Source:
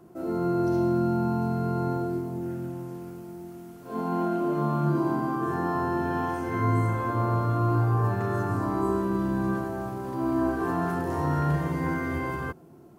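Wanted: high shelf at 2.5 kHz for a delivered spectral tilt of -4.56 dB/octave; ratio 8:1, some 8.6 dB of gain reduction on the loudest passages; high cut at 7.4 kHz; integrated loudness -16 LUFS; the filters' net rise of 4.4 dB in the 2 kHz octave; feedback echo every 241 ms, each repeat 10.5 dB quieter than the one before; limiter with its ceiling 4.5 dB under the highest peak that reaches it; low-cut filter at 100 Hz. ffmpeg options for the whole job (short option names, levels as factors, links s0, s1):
-af "highpass=100,lowpass=7400,equalizer=f=2000:t=o:g=8.5,highshelf=f=2500:g=-6.5,acompressor=threshold=0.0316:ratio=8,alimiter=level_in=1.33:limit=0.0631:level=0:latency=1,volume=0.75,aecho=1:1:241|482|723:0.299|0.0896|0.0269,volume=8.91"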